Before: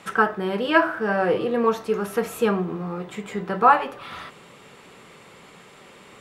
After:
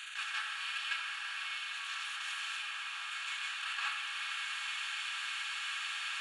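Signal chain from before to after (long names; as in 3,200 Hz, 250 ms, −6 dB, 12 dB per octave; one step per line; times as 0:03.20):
compressor on every frequency bin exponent 0.2
output level in coarse steps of 9 dB
four-pole ladder high-pass 2,800 Hz, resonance 30%
convolution reverb RT60 0.70 s, pre-delay 151 ms, DRR −7 dB
downsampling to 22,050 Hz
level −4.5 dB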